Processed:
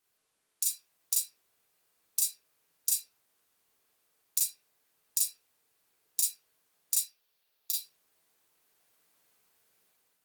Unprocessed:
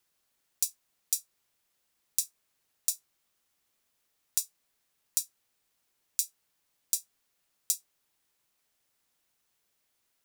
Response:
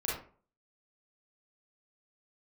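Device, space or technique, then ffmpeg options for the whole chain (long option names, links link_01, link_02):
far-field microphone of a smart speaker: -filter_complex "[0:a]asplit=3[link_01][link_02][link_03];[link_01]afade=type=out:start_time=6.98:duration=0.02[link_04];[link_02]equalizer=frequency=125:width_type=o:width=1:gain=-8,equalizer=frequency=250:width_type=o:width=1:gain=-12,equalizer=frequency=1000:width_type=o:width=1:gain=-4,equalizer=frequency=2000:width_type=o:width=1:gain=-5,equalizer=frequency=4000:width_type=o:width=1:gain=5,equalizer=frequency=8000:width_type=o:width=1:gain=-11,afade=type=in:start_time=6.98:duration=0.02,afade=type=out:start_time=7.76:duration=0.02[link_05];[link_03]afade=type=in:start_time=7.76:duration=0.02[link_06];[link_04][link_05][link_06]amix=inputs=3:normalize=0[link_07];[1:a]atrim=start_sample=2205[link_08];[link_07][link_08]afir=irnorm=-1:irlink=0,highpass=140,dynaudnorm=framelen=470:gausssize=3:maxgain=6dB,volume=-1.5dB" -ar 48000 -c:a libopus -b:a 24k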